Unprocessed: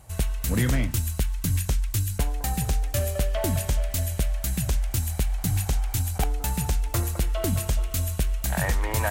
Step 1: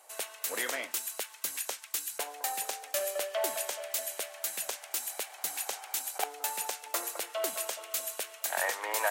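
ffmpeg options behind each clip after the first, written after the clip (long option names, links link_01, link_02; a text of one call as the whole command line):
ffmpeg -i in.wav -af "highpass=frequency=480:width=0.5412,highpass=frequency=480:width=1.3066,volume=-1.5dB" out.wav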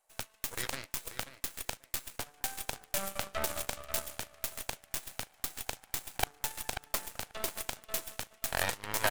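ffmpeg -i in.wav -filter_complex "[0:a]asplit=2[link_01][link_02];[link_02]adelay=537,lowpass=frequency=2200:poles=1,volume=-4dB,asplit=2[link_03][link_04];[link_04]adelay=537,lowpass=frequency=2200:poles=1,volume=0.33,asplit=2[link_05][link_06];[link_06]adelay=537,lowpass=frequency=2200:poles=1,volume=0.33,asplit=2[link_07][link_08];[link_08]adelay=537,lowpass=frequency=2200:poles=1,volume=0.33[link_09];[link_01][link_03][link_05][link_07][link_09]amix=inputs=5:normalize=0,aeval=exprs='0.224*(cos(1*acos(clip(val(0)/0.224,-1,1)))-cos(1*PI/2))+0.0501*(cos(3*acos(clip(val(0)/0.224,-1,1)))-cos(3*PI/2))+0.0158*(cos(6*acos(clip(val(0)/0.224,-1,1)))-cos(6*PI/2))+0.00891*(cos(7*acos(clip(val(0)/0.224,-1,1)))-cos(7*PI/2))':channel_layout=same,volume=7dB" out.wav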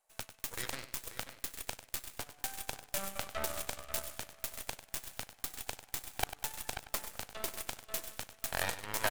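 ffmpeg -i in.wav -af "aecho=1:1:97|194|291:0.237|0.0569|0.0137,volume=-3dB" out.wav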